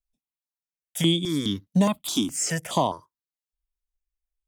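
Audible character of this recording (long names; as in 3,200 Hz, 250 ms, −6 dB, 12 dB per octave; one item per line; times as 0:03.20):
notches that jump at a steady rate 4.8 Hz 350–5,400 Hz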